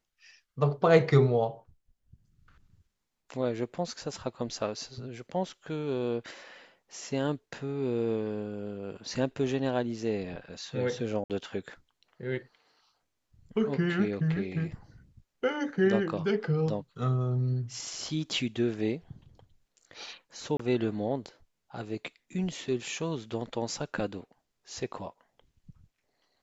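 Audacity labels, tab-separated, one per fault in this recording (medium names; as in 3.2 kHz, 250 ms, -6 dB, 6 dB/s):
11.240000	11.300000	dropout 58 ms
20.570000	20.590000	dropout 24 ms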